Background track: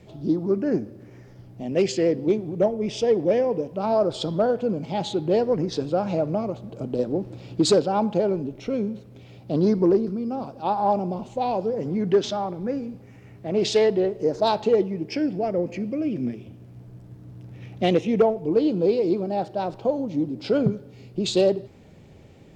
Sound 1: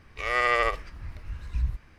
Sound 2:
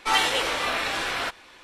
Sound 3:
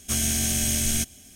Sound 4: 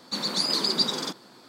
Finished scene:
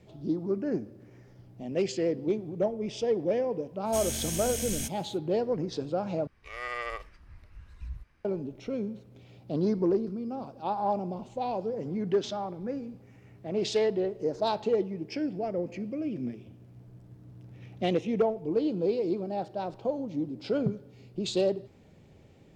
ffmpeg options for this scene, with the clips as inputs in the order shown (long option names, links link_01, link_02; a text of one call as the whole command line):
ffmpeg -i bed.wav -i cue0.wav -i cue1.wav -i cue2.wav -filter_complex "[0:a]volume=-7dB,asplit=2[link_01][link_02];[link_01]atrim=end=6.274[link_03];[1:a]atrim=end=1.98,asetpts=PTS-STARTPTS,volume=-12dB[link_04];[link_02]atrim=start=8.246[link_05];[3:a]atrim=end=1.35,asetpts=PTS-STARTPTS,volume=-9.5dB,afade=type=in:duration=0.05,afade=type=out:start_time=1.3:duration=0.05,adelay=3840[link_06];[link_03][link_04]acrossfade=duration=0.004:curve1=hsin:curve2=hsin[link_07];[link_07][link_05]acrossfade=duration=0.004:curve1=hsin:curve2=hsin[link_08];[link_08][link_06]amix=inputs=2:normalize=0" out.wav